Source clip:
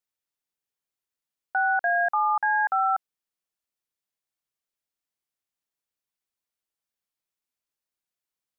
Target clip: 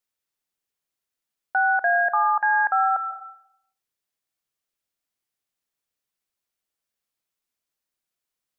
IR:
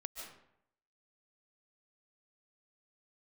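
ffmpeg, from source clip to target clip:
-filter_complex "[0:a]asplit=2[link_01][link_02];[link_02]equalizer=frequency=910:width=4.5:gain=-5[link_03];[1:a]atrim=start_sample=2205[link_04];[link_03][link_04]afir=irnorm=-1:irlink=0,volume=-2dB[link_05];[link_01][link_05]amix=inputs=2:normalize=0"

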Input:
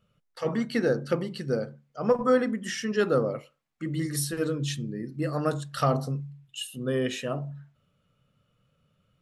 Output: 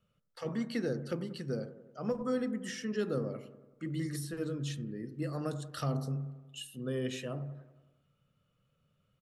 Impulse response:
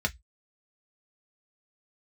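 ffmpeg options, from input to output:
-filter_complex "[0:a]acrossover=split=390|3000[link_01][link_02][link_03];[link_02]acompressor=threshold=-37dB:ratio=2.5[link_04];[link_01][link_04][link_03]amix=inputs=3:normalize=0,acrossover=split=1700[link_05][link_06];[link_05]aecho=1:1:93|186|279|372|465|558|651:0.224|0.134|0.0806|0.0484|0.029|0.0174|0.0104[link_07];[link_06]alimiter=level_in=3.5dB:limit=-24dB:level=0:latency=1:release=386,volume=-3.5dB[link_08];[link_07][link_08]amix=inputs=2:normalize=0,volume=-6dB"

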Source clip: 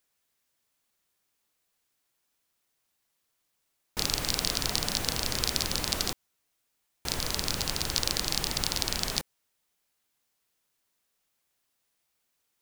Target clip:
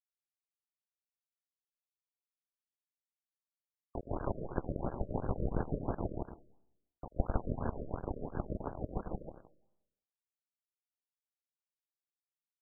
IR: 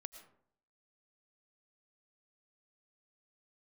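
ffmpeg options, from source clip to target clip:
-filter_complex "[0:a]tremolo=f=6.8:d=0.82,aeval=exprs='val(0)*gte(abs(val(0)),0.0376)':channel_layout=same,equalizer=frequency=2100:width_type=o:width=1.1:gain=-3,aecho=1:1:99.13|166.2|277:0.501|0.794|0.251,asetrate=34006,aresample=44100,atempo=1.29684,adynamicequalizer=threshold=0.00126:dfrequency=1300:dqfactor=2.4:tfrequency=1300:tqfactor=2.4:attack=5:release=100:ratio=0.375:range=4:mode=cutabove:tftype=bell,asplit=2[link_01][link_02];[1:a]atrim=start_sample=2205,lowpass=1000[link_03];[link_02][link_03]afir=irnorm=-1:irlink=0,volume=-1dB[link_04];[link_01][link_04]amix=inputs=2:normalize=0,acompressor=mode=upward:threshold=-53dB:ratio=2.5,afftfilt=real='re*lt(b*sr/1024,620*pow(1700/620,0.5+0.5*sin(2*PI*2.9*pts/sr)))':imag='im*lt(b*sr/1024,620*pow(1700/620,0.5+0.5*sin(2*PI*2.9*pts/sr)))':win_size=1024:overlap=0.75,volume=6.5dB"

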